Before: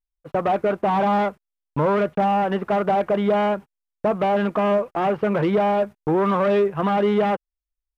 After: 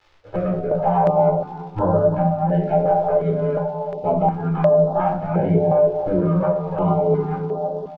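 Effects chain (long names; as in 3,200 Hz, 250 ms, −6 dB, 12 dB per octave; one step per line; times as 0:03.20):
every overlapping window played backwards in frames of 33 ms
mains-hum notches 60/120/180/240/300/360 Hz
treble cut that deepens with the level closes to 450 Hz, closed at −18 dBFS
comb filter 1.3 ms, depth 38%
delay with a band-pass on its return 322 ms, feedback 48%, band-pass 440 Hz, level −6 dB
surface crackle 160 per second −39 dBFS
high-frequency loss of the air 210 metres
rectangular room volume 520 cubic metres, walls furnished, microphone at 4.1 metres
notch on a step sequencer 2.8 Hz 220–2,300 Hz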